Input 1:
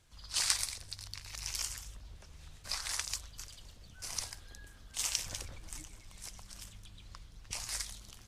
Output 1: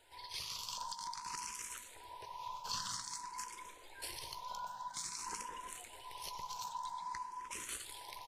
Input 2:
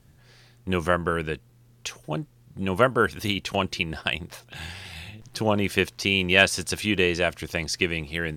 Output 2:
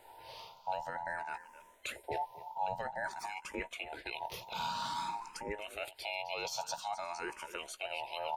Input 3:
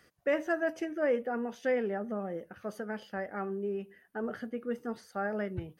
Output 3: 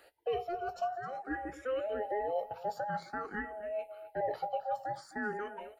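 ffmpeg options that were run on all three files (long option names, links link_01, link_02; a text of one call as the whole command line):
ffmpeg -i in.wav -filter_complex "[0:a]afftfilt=real='real(if(between(b,1,1008),(2*floor((b-1)/48)+1)*48-b,b),0)':imag='imag(if(between(b,1,1008),(2*floor((b-1)/48)+1)*48-b,b),0)*if(between(b,1,1008),-1,1)':win_size=2048:overlap=0.75,asplit=2[link_01][link_02];[link_02]adelay=17,volume=-12.5dB[link_03];[link_01][link_03]amix=inputs=2:normalize=0,areverse,acompressor=threshold=-35dB:ratio=5,areverse,equalizer=frequency=270:width=7.6:gain=-9,alimiter=level_in=7.5dB:limit=-24dB:level=0:latency=1:release=216,volume=-7.5dB,highshelf=frequency=2300:gain=-3.5,asplit=2[link_04][link_05];[link_05]aecho=0:1:261:0.158[link_06];[link_04][link_06]amix=inputs=2:normalize=0,asplit=2[link_07][link_08];[link_08]afreqshift=0.51[link_09];[link_07][link_09]amix=inputs=2:normalize=1,volume=8dB" out.wav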